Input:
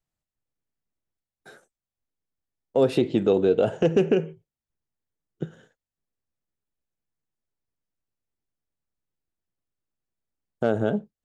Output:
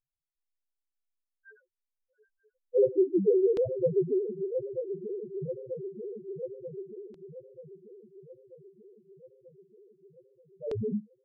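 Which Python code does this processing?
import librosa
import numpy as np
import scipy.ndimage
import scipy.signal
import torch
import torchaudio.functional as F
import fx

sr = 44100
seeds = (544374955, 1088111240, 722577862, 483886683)

y = fx.reverse_delay_fb(x, sr, ms=468, feedback_pct=76, wet_db=-7.5)
y = fx.spec_topn(y, sr, count=1)
y = fx.filter_lfo_lowpass(y, sr, shape='saw_down', hz=0.28, low_hz=320.0, high_hz=4000.0, q=1.7)
y = y * 10.0 ** (2.0 / 20.0)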